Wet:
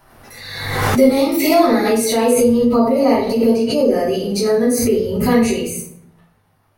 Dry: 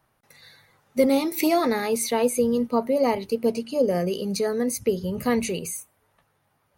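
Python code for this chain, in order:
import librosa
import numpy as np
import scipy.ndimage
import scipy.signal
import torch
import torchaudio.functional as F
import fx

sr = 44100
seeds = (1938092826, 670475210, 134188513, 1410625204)

y = fx.room_shoebox(x, sr, seeds[0], volume_m3=110.0, walls='mixed', distance_m=3.0)
y = fx.pre_swell(y, sr, db_per_s=43.0)
y = y * 10.0 ** (-4.5 / 20.0)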